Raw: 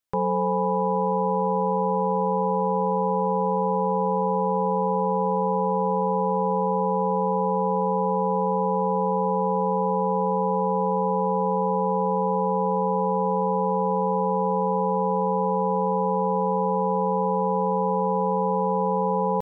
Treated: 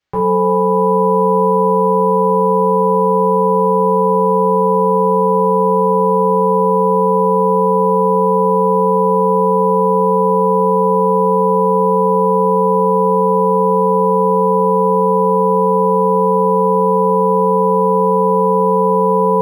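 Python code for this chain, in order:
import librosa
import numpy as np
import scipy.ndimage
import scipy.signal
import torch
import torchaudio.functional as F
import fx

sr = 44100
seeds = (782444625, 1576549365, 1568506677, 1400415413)

y = fx.rev_double_slope(x, sr, seeds[0], early_s=0.44, late_s=4.3, knee_db=-18, drr_db=-7.0)
y = np.interp(np.arange(len(y)), np.arange(len(y))[::4], y[::4])
y = y * librosa.db_to_amplitude(2.0)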